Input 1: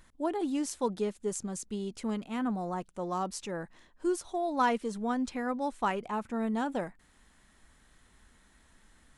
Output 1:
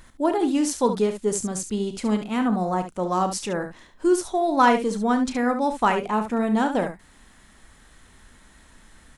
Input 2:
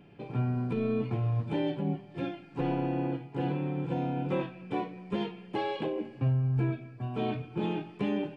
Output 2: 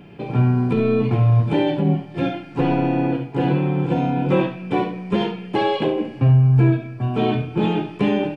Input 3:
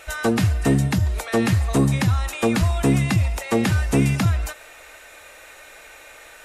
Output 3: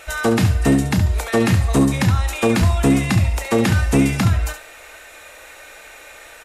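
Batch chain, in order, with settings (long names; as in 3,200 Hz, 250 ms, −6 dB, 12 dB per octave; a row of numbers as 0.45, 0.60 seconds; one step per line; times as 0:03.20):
ambience of single reflections 33 ms −12 dB, 70 ms −9.5 dB
normalise the peak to −6 dBFS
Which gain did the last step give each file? +9.5, +11.5, +2.5 decibels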